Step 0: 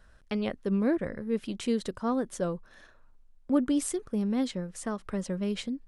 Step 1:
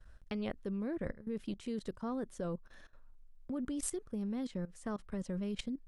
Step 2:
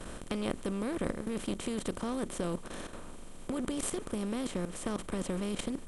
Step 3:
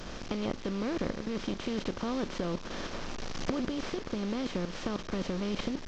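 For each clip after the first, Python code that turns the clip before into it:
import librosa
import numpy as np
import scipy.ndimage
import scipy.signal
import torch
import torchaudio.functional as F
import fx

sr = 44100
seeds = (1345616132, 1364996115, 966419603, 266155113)

y1 = fx.low_shelf(x, sr, hz=100.0, db=9.0)
y1 = fx.level_steps(y1, sr, step_db=17)
y1 = F.gain(torch.from_numpy(y1), -2.5).numpy()
y2 = fx.bin_compress(y1, sr, power=0.4)
y3 = fx.delta_mod(y2, sr, bps=32000, step_db=-39.5)
y3 = fx.recorder_agc(y3, sr, target_db=-22.0, rise_db_per_s=10.0, max_gain_db=30)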